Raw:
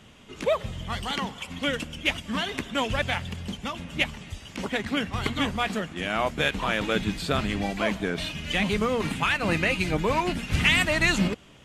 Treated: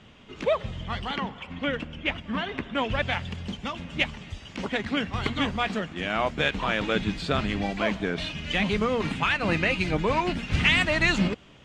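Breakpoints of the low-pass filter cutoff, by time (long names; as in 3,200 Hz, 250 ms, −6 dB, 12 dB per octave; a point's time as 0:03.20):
0:00.79 4,600 Hz
0:01.30 2,500 Hz
0:02.67 2,500 Hz
0:03.24 5,500 Hz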